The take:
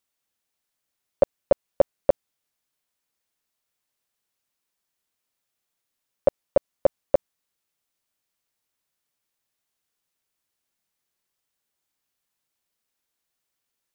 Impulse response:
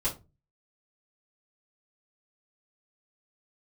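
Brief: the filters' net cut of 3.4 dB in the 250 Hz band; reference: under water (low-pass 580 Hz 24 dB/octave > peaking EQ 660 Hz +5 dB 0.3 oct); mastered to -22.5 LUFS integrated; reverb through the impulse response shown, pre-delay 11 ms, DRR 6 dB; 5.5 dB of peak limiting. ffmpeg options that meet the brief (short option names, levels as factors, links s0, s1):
-filter_complex "[0:a]equalizer=f=250:t=o:g=-5,alimiter=limit=0.211:level=0:latency=1,asplit=2[s0][s1];[1:a]atrim=start_sample=2205,adelay=11[s2];[s1][s2]afir=irnorm=-1:irlink=0,volume=0.237[s3];[s0][s3]amix=inputs=2:normalize=0,lowpass=f=580:w=0.5412,lowpass=f=580:w=1.3066,equalizer=f=660:t=o:w=0.3:g=5,volume=2.51"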